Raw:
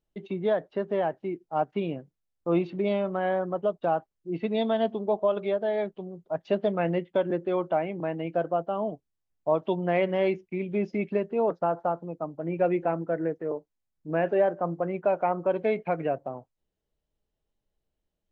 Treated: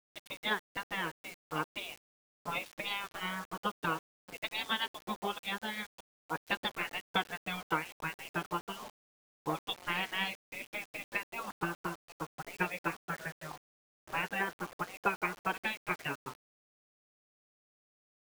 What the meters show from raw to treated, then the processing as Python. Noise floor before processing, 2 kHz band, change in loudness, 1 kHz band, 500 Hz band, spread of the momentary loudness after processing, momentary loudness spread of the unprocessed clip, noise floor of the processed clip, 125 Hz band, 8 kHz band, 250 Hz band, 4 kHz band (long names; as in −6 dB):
−83 dBFS, +3.5 dB, −9.0 dB, −6.0 dB, −19.5 dB, 10 LU, 9 LU, below −85 dBFS, −11.0 dB, can't be measured, −13.0 dB, +7.5 dB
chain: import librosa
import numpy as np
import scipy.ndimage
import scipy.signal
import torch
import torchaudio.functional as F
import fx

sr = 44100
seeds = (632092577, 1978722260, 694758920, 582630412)

y = fx.tilt_shelf(x, sr, db=-7.0, hz=670.0)
y = fx.transient(y, sr, attack_db=7, sustain_db=-2)
y = fx.spec_gate(y, sr, threshold_db=-15, keep='weak')
y = fx.quant_dither(y, sr, seeds[0], bits=8, dither='none')